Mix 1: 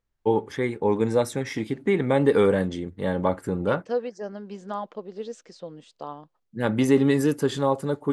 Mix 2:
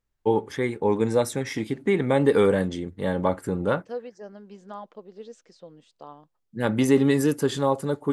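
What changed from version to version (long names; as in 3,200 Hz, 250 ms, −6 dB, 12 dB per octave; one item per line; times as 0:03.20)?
first voice: add high-shelf EQ 6,400 Hz +5 dB
second voice −7.0 dB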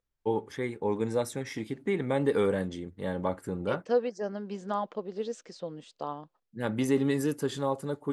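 first voice −7.0 dB
second voice +7.5 dB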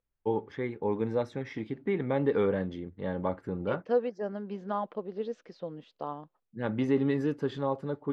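master: add high-frequency loss of the air 250 metres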